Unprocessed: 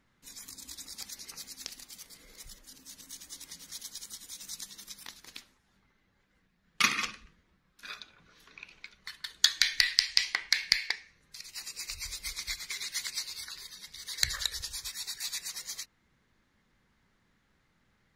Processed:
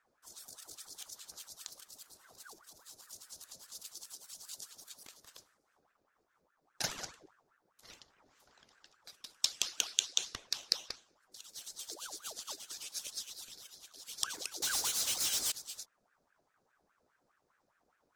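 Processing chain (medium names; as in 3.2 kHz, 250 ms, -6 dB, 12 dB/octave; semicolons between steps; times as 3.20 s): high-order bell 2.2 kHz -15 dB; 14.62–15.52 s: waveshaping leveller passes 5; ring modulator with a swept carrier 970 Hz, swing 65%, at 4.9 Hz; trim -1.5 dB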